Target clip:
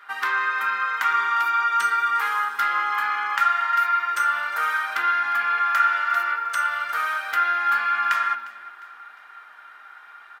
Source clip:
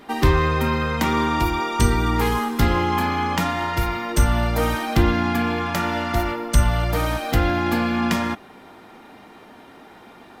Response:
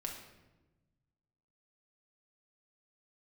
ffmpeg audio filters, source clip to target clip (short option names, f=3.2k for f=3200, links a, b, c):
-filter_complex "[0:a]highpass=f=1.4k:t=q:w=5.2,aecho=1:1:354|708|1062|1416:0.1|0.047|0.0221|0.0104,asplit=2[a][b];[1:a]atrim=start_sample=2205,lowpass=3.6k[c];[b][c]afir=irnorm=-1:irlink=0,volume=-1dB[d];[a][d]amix=inputs=2:normalize=0,volume=-8.5dB"